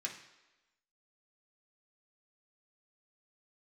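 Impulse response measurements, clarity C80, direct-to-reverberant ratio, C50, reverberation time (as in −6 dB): 10.5 dB, −2.0 dB, 8.0 dB, 1.1 s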